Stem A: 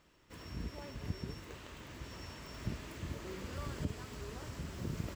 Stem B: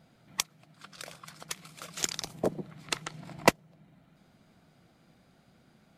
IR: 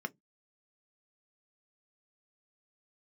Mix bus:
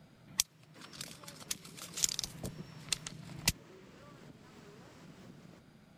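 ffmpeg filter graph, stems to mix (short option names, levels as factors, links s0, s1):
-filter_complex "[0:a]highpass=f=150:w=0.5412,highpass=f=150:w=1.3066,highshelf=f=10000:g=-8,acompressor=threshold=0.002:ratio=6,adelay=450,volume=0.944[s0];[1:a]bandreject=f=720:w=17,acrossover=split=130|3000[s1][s2][s3];[s2]acompressor=threshold=0.00158:ratio=3[s4];[s1][s4][s3]amix=inputs=3:normalize=0,volume=1.12[s5];[s0][s5]amix=inputs=2:normalize=0,lowshelf=f=180:g=3.5"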